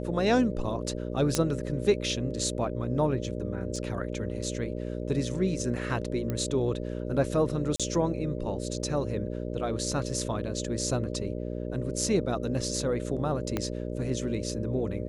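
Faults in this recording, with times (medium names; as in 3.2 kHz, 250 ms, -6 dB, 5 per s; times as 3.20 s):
buzz 60 Hz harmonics 10 -34 dBFS
1.35 s: pop -10 dBFS
3.76 s: dropout 2.3 ms
6.30 s: pop -18 dBFS
7.76–7.80 s: dropout 36 ms
13.57 s: pop -14 dBFS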